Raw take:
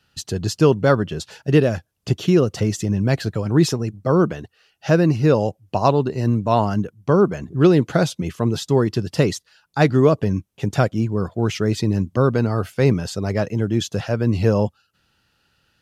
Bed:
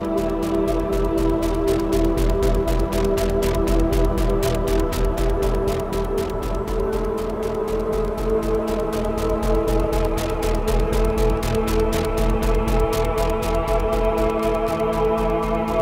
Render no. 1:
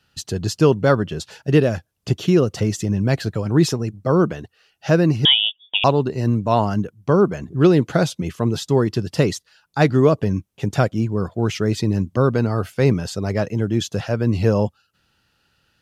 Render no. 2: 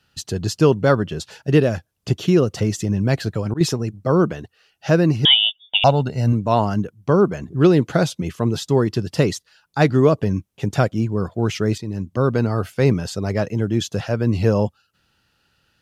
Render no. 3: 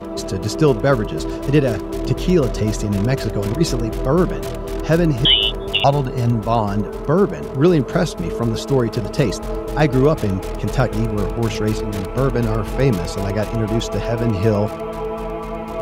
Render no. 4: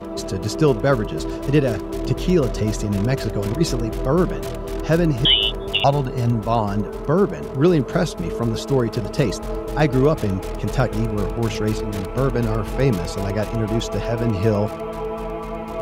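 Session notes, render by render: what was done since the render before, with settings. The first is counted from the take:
5.25–5.84 s: frequency inversion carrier 3.5 kHz
2.57–3.61 s: slow attack 159 ms; 5.30–6.33 s: comb 1.4 ms; 11.78–12.36 s: fade in, from -12 dB
add bed -5.5 dB
trim -2 dB

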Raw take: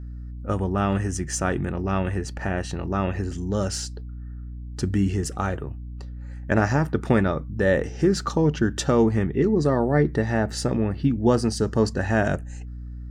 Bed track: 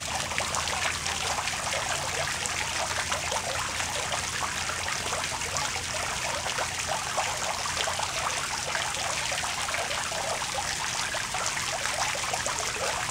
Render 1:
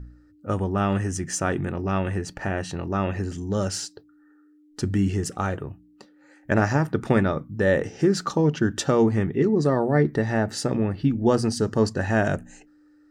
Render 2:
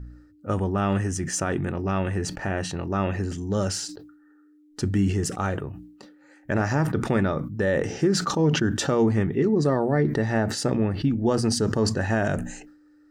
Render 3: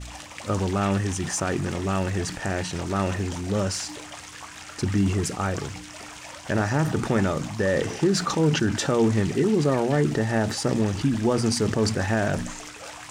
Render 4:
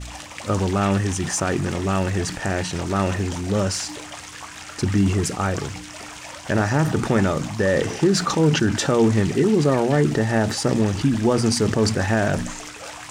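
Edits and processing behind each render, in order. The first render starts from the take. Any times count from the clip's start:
de-hum 60 Hz, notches 4
peak limiter -13 dBFS, peak gain reduction 6 dB; decay stretcher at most 72 dB/s
add bed track -10.5 dB
trim +3.5 dB

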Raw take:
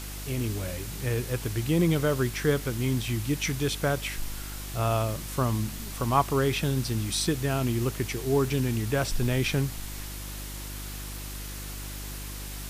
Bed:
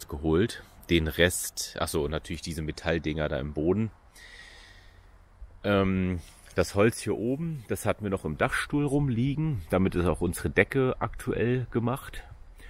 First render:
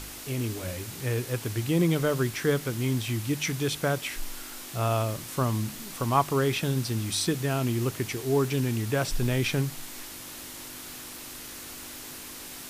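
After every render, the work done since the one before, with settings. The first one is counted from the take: de-hum 50 Hz, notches 4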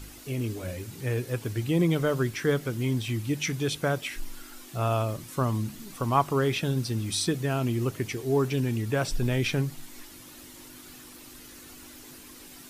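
noise reduction 9 dB, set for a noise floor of -42 dBFS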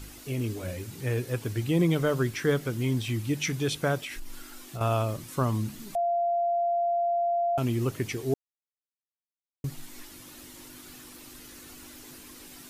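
3.97–4.81 s: compression 5:1, threshold -33 dBFS; 5.95–7.58 s: bleep 691 Hz -23 dBFS; 8.34–9.64 s: mute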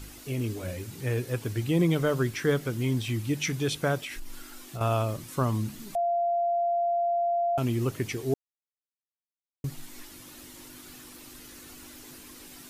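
no audible change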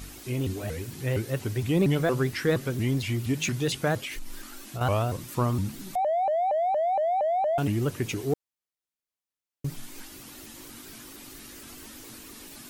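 in parallel at -11 dB: hard clipper -31 dBFS, distortion -7 dB; on the sum: vibrato with a chosen wave saw up 4.3 Hz, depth 250 cents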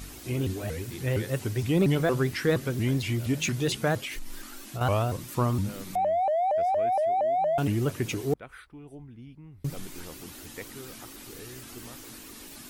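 add bed -19.5 dB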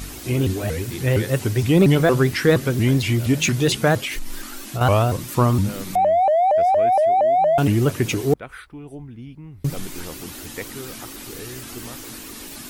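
trim +8.5 dB

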